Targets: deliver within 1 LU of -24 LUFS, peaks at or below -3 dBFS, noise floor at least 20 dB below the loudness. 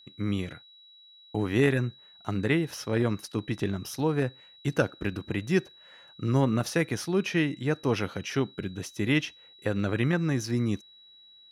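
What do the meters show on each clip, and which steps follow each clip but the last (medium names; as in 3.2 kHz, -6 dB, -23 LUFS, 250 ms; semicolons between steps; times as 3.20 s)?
steady tone 3.9 kHz; tone level -52 dBFS; loudness -29.0 LUFS; peak level -9.5 dBFS; loudness target -24.0 LUFS
-> band-stop 3.9 kHz, Q 30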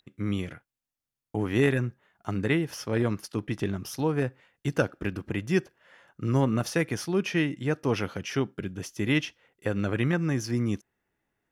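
steady tone not found; loudness -29.0 LUFS; peak level -9.5 dBFS; loudness target -24.0 LUFS
-> trim +5 dB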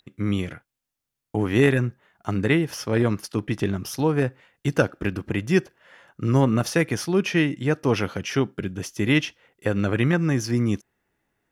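loudness -24.0 LUFS; peak level -4.5 dBFS; noise floor -84 dBFS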